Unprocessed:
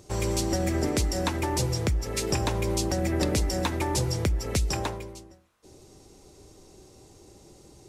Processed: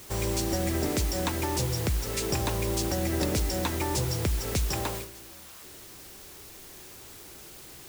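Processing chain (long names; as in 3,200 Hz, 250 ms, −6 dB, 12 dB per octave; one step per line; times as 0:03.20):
converter with a step at zero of −37 dBFS
bit-depth reduction 6 bits, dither triangular
noise gate −32 dBFS, range −9 dB
level −3 dB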